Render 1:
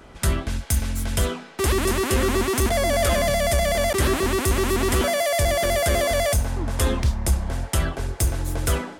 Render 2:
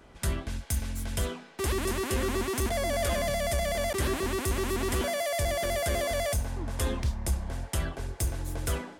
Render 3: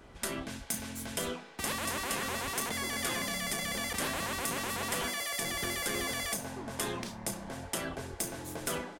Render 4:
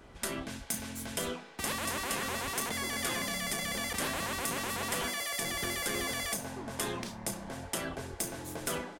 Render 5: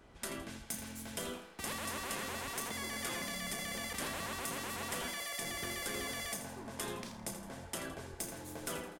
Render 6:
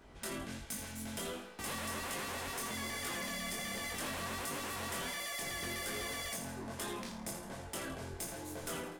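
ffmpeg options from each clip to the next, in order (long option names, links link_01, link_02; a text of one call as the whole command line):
ffmpeg -i in.wav -af "bandreject=frequency=1300:width=22,volume=-8dB" out.wav
ffmpeg -i in.wav -filter_complex "[0:a]afftfilt=real='re*lt(hypot(re,im),0.126)':imag='im*lt(hypot(re,im),0.126)':win_size=1024:overlap=0.75,asplit=2[link_01][link_02];[link_02]adelay=34,volume=-11dB[link_03];[link_01][link_03]amix=inputs=2:normalize=0" out.wav
ffmpeg -i in.wav -af anull out.wav
ffmpeg -i in.wav -af "aecho=1:1:82|164|246|328:0.299|0.119|0.0478|0.0191,volume=-6dB" out.wav
ffmpeg -i in.wav -af "flanger=delay=20:depth=3.5:speed=1.3,asoftclip=type=tanh:threshold=-39.5dB,volume=5.5dB" out.wav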